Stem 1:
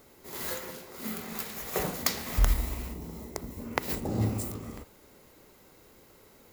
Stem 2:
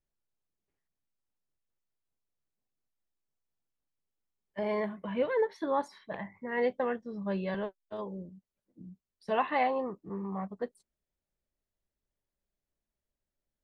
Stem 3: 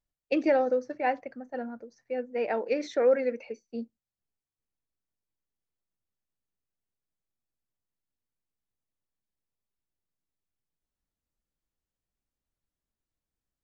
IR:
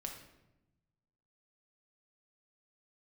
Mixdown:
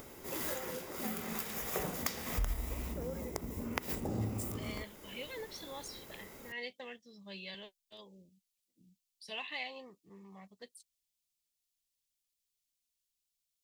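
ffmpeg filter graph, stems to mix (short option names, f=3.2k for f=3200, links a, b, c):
-filter_complex "[0:a]acompressor=mode=upward:threshold=-48dB:ratio=2.5,bandreject=f=4.2k:w=7.9,volume=2dB[a];[1:a]aexciter=amount=10.4:drive=8:freq=2.2k,volume=-17.5dB[b];[2:a]volume=-17.5dB[c];[a][b][c]amix=inputs=3:normalize=0,acompressor=threshold=-37dB:ratio=2.5"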